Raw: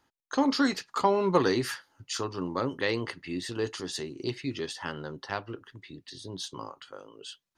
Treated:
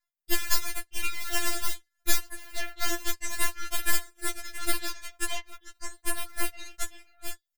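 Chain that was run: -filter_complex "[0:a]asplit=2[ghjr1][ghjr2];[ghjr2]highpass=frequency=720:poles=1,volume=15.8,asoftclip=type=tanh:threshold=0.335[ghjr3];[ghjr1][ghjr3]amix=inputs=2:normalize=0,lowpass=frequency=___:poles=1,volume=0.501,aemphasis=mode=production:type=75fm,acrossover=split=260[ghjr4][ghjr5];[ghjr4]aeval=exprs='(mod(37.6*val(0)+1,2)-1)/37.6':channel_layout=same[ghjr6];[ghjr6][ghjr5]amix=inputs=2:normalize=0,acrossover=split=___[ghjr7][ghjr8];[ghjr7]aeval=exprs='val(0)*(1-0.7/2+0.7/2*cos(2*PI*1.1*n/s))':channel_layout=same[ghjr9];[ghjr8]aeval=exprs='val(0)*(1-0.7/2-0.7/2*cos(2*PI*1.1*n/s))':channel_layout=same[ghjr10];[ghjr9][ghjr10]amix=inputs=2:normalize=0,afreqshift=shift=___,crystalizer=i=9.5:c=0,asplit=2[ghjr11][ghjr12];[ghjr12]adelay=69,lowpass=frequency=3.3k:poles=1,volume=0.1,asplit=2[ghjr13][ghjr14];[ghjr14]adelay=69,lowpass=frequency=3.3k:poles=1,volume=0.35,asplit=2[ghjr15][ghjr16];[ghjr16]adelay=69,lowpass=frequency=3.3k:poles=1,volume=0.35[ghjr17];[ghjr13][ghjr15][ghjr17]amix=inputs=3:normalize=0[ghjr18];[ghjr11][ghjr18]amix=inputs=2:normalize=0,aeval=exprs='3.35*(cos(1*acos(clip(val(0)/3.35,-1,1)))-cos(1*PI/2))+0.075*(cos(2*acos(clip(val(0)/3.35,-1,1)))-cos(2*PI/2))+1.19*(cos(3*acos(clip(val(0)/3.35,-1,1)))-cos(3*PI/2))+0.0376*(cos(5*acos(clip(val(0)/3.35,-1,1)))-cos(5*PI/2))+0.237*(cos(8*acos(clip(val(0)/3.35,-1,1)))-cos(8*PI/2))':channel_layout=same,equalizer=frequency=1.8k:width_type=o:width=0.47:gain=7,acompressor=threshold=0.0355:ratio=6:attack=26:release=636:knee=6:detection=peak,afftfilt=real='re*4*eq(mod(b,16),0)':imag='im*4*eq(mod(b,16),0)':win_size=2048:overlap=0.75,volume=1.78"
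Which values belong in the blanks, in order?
1.9k, 1300, 310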